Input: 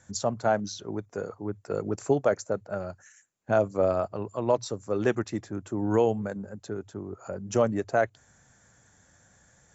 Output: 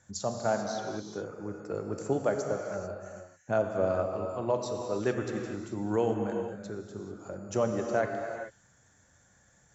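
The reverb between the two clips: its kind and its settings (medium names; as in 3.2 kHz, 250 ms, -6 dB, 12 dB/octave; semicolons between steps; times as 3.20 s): gated-style reverb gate 470 ms flat, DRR 2.5 dB; trim -5 dB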